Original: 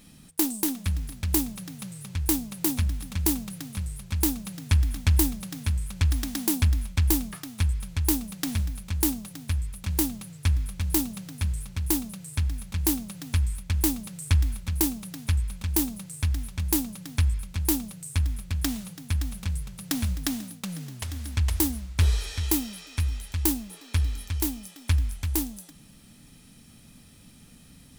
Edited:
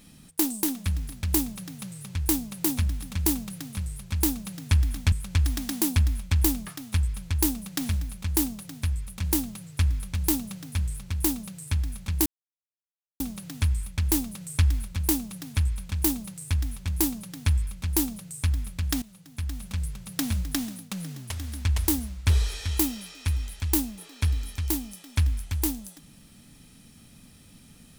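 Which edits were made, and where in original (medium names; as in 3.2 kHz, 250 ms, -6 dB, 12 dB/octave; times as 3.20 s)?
5.12–5.78 s: delete
12.92 s: insert silence 0.94 s
18.74–19.56 s: fade in, from -18 dB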